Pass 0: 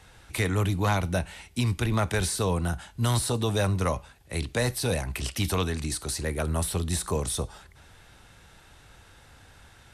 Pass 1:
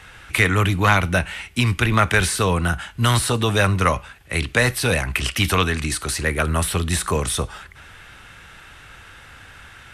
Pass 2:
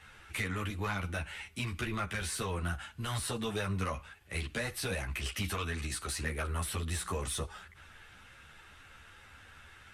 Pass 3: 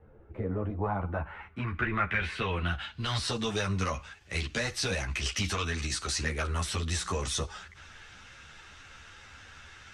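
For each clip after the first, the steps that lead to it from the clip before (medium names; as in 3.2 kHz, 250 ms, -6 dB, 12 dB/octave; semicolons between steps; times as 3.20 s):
high-order bell 1.9 kHz +8 dB; trim +6 dB
compression, threshold -18 dBFS, peak gain reduction 7.5 dB; saturation -14 dBFS, distortion -19 dB; three-phase chorus; trim -8.5 dB
low-pass sweep 470 Hz -> 6.1 kHz, 0.28–3.42 s; trim +3.5 dB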